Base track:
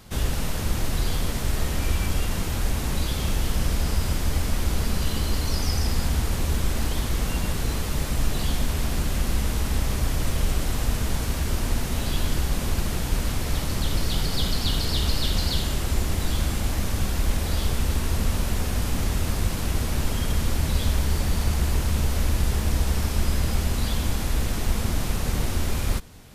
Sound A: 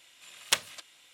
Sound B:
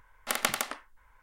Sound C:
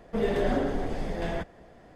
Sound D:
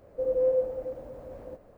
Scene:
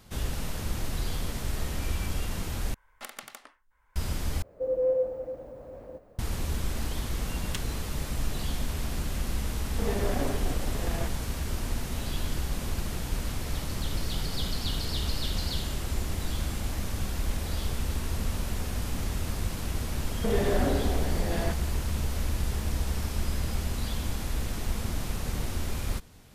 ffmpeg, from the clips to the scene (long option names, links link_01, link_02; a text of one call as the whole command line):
ffmpeg -i bed.wav -i cue0.wav -i cue1.wav -i cue2.wav -i cue3.wav -filter_complex "[2:a]asplit=2[link_01][link_02];[3:a]asplit=2[link_03][link_04];[0:a]volume=-6.5dB[link_05];[link_01]acompressor=threshold=-34dB:ratio=2.5:attack=5.1:release=643:knee=1:detection=rms[link_06];[link_03]aeval=exprs='if(lt(val(0),0),0.251*val(0),val(0))':channel_layout=same[link_07];[link_02]acompressor=threshold=-41dB:ratio=6:attack=3.2:release=140:knee=1:detection=peak[link_08];[link_04]asoftclip=type=hard:threshold=-20dB[link_09];[link_05]asplit=3[link_10][link_11][link_12];[link_10]atrim=end=2.744[link_13];[link_06]atrim=end=1.22,asetpts=PTS-STARTPTS,volume=-3.5dB[link_14];[link_11]atrim=start=3.956:end=4.424[link_15];[4:a]atrim=end=1.77,asetpts=PTS-STARTPTS,volume=-1dB[link_16];[link_12]atrim=start=6.186[link_17];[1:a]atrim=end=1.13,asetpts=PTS-STARTPTS,volume=-13dB,afade=type=in:duration=0.004:curve=hsin,afade=type=out:start_time=1.126:duration=0.004:curve=hsin,adelay=7020[link_18];[link_07]atrim=end=1.95,asetpts=PTS-STARTPTS,volume=-1.5dB,afade=type=in:duration=0.004:curve=hsin,afade=type=out:start_time=1.946:duration=0.004:curve=hsin,adelay=9650[link_19];[link_08]atrim=end=1.22,asetpts=PTS-STARTPTS,volume=-14.5dB,afade=type=in:duration=0.004:curve=hsin,afade=type=out:start_time=1.216:duration=0.004:curve=hsin,adelay=13500[link_20];[link_09]atrim=end=1.95,asetpts=PTS-STARTPTS,volume=-0.5dB,afade=type=in:duration=0.004:curve=hsin,afade=type=out:start_time=1.946:duration=0.004:curve=hsin,adelay=20100[link_21];[link_13][link_14]acrossfade=duration=0.004:curve1=hsin:curve2=hsin[link_22];[link_22][link_15]acrossfade=duration=0.004:curve1=hsin:curve2=hsin[link_23];[link_23][link_16]acrossfade=duration=0.004:curve1=hsin:curve2=hsin[link_24];[link_24][link_17]acrossfade=duration=0.004:curve1=hsin:curve2=hsin[link_25];[link_25][link_18][link_19][link_20][link_21]amix=inputs=5:normalize=0" out.wav